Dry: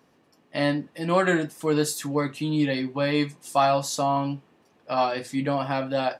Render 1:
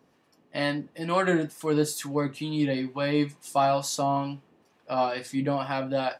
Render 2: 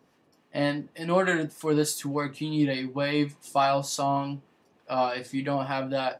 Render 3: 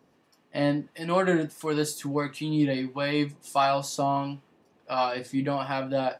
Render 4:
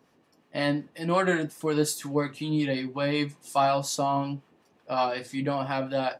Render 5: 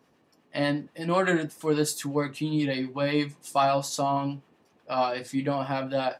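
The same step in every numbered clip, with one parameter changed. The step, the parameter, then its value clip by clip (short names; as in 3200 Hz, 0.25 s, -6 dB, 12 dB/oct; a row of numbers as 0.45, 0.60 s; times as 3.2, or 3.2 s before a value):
harmonic tremolo, rate: 2.2, 3.4, 1.5, 5.5, 8.2 Hz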